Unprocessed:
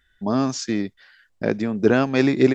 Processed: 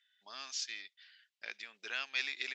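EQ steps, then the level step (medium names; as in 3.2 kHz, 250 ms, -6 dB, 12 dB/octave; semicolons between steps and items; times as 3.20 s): ladder band-pass 3.6 kHz, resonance 30%; +5.5 dB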